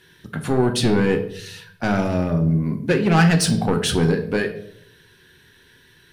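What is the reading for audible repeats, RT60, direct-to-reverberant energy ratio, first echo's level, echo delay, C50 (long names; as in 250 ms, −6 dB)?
no echo audible, 0.70 s, 5.0 dB, no echo audible, no echo audible, 11.0 dB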